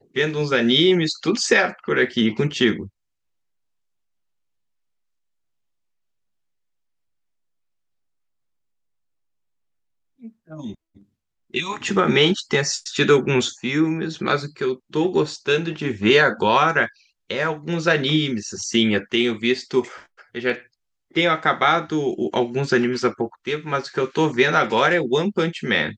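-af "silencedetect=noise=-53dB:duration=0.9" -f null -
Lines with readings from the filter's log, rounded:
silence_start: 2.89
silence_end: 10.20 | silence_duration: 7.30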